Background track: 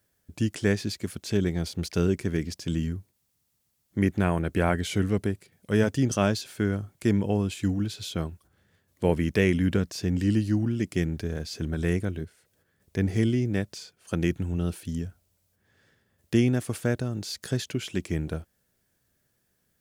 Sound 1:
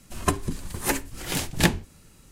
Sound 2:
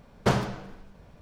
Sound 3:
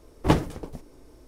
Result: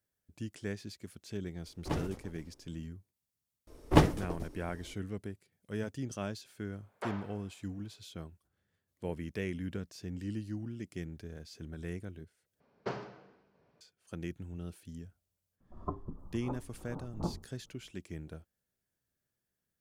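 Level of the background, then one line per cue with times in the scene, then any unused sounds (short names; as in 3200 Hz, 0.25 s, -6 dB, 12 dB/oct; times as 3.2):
background track -14.5 dB
1.61 add 3 -15.5 dB + sustainer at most 84 dB/s
3.67 add 3 -2 dB
6.76 add 2 -11.5 dB + BPF 580–2500 Hz
12.6 replace with 2 -14 dB + speaker cabinet 160–5300 Hz, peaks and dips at 200 Hz -4 dB, 400 Hz +5 dB, 3500 Hz -6 dB
15.6 add 1 -13.5 dB + steep low-pass 1300 Hz 96 dB/oct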